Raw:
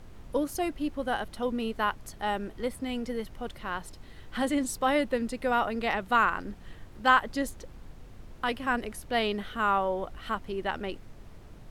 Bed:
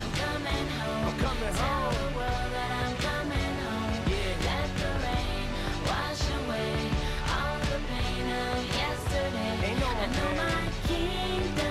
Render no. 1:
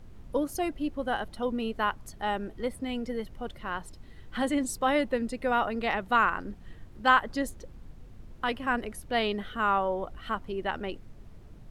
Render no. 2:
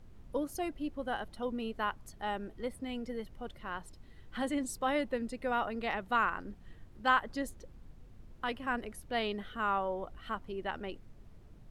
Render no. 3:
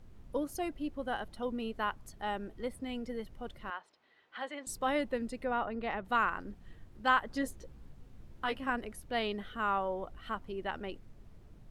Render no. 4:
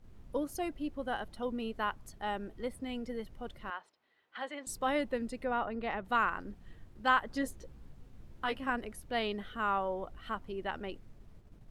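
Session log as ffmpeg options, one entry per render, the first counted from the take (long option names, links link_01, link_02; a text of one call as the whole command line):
ffmpeg -i in.wav -af "afftdn=noise_reduction=6:noise_floor=-48" out.wav
ffmpeg -i in.wav -af "volume=-6dB" out.wav
ffmpeg -i in.wav -filter_complex "[0:a]asettb=1/sr,asplit=3[link_01][link_02][link_03];[link_01]atrim=end=3.704[link_04];[link_02]atrim=start=3.7:end=4.67,asetpts=PTS-STARTPTS,afade=type=in:duration=0.004:curve=qsin,afade=type=out:start_time=0.966:duration=0.004:curve=qsin,highpass=650,lowpass=3500[link_05];[link_03]atrim=start=4.666[link_06];[link_04][link_05]acrossfade=duration=0.004:curve1=hsin:curve2=qsin[link_07];[link_07][link_06]acrossfade=duration=0.004:curve1=qsin:curve2=hsin,asettb=1/sr,asplit=3[link_08][link_09][link_10];[link_08]atrim=end=5.444[link_11];[link_09]atrim=start=5.44:end=6.05,asetpts=PTS-STARTPTS,afade=type=in:duration=0.004:curve=qsin,afade=type=out:start_time=0.606:duration=0.004:curve=qsin,lowpass=frequency=1900:poles=1[link_12];[link_10]atrim=start=6.046[link_13];[link_11][link_12]acrossfade=duration=0.004:curve1=hsin:curve2=qsin[link_14];[link_14][link_13]acrossfade=duration=0.004:curve1=qsin:curve2=hsin,asettb=1/sr,asplit=3[link_15][link_16][link_17];[link_15]atrim=end=7.304[link_18];[link_16]atrim=start=7.3:end=8.7,asetpts=PTS-STARTPTS,afade=type=in:duration=0.004:curve=qsin,afade=type=out:start_time=1.396:duration=0.004:curve=qsin,asplit=2[link_19][link_20];[link_20]adelay=15,volume=-4.5dB[link_21];[link_19][link_21]amix=inputs=2:normalize=0,atrim=end_sample=61740[link_22];[link_17]atrim=start=8.696[link_23];[link_18][link_22]acrossfade=duration=0.004:curve1=hsin:curve2=qsin[link_24];[link_24][link_23]acrossfade=duration=0.004:curve1=qsin:curve2=hsin" out.wav
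ffmpeg -i in.wav -af "agate=range=-6dB:threshold=-53dB:ratio=16:detection=peak" out.wav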